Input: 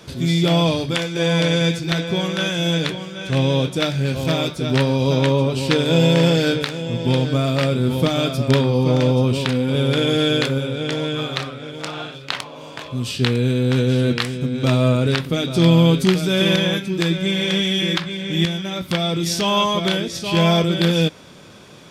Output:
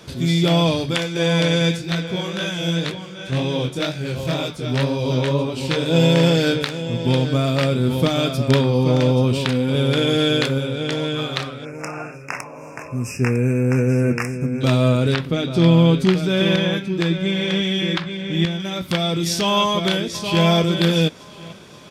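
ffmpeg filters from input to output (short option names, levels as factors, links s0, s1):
-filter_complex "[0:a]asplit=3[s0][s1][s2];[s0]afade=t=out:st=1.76:d=0.02[s3];[s1]flanger=delay=17:depth=7.6:speed=2,afade=t=in:st=1.76:d=0.02,afade=t=out:st=5.94:d=0.02[s4];[s2]afade=t=in:st=5.94:d=0.02[s5];[s3][s4][s5]amix=inputs=3:normalize=0,asettb=1/sr,asplit=3[s6][s7][s8];[s6]atrim=end=11.654[s9];[s7]atrim=start=11.65:end=14.61,asetpts=PTS-STARTPTS,afade=t=in:d=0.004:c=qsin,afade=t=out:st=2.956:d=0.004:c=qsin,asuperstop=centerf=3700:order=20:qfactor=1.6[s10];[s8]atrim=start=14.606[s11];[s9][s10]acrossfade=d=0.004:c1=hsin:c2=qsin[s12];[s12][s11]acrossfade=d=0.004:c1=qsin:c2=hsin,asettb=1/sr,asplit=3[s13][s14][s15];[s13]atrim=end=15.144[s16];[s14]atrim=start=15.14:end=18.6,asetpts=PTS-STARTPTS,afade=t=in:d=0.004:c=qsin,afade=t=out:st=3.456:d=0.004:c=qsin,lowpass=f=3200:p=1[s17];[s15]atrim=start=18.596[s18];[s16][s17]acrossfade=d=0.004:c1=hsin:c2=qsin[s19];[s19][s18]acrossfade=d=0.004:c1=qsin:c2=hsin,asplit=2[s20][s21];[s21]afade=t=in:st=19.61:d=0.01,afade=t=out:st=20.46:d=0.01,aecho=0:1:530|1060|1590|2120|2650:0.149624|0.082293|0.0452611|0.0248936|0.0136915[s22];[s20][s22]amix=inputs=2:normalize=0"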